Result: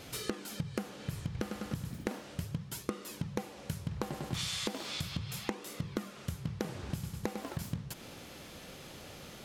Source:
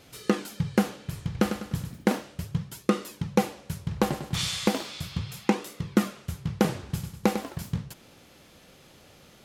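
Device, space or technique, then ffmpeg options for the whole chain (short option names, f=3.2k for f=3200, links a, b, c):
serial compression, leveller first: -af "acompressor=threshold=-28dB:ratio=2,acompressor=threshold=-39dB:ratio=5,volume=5dB"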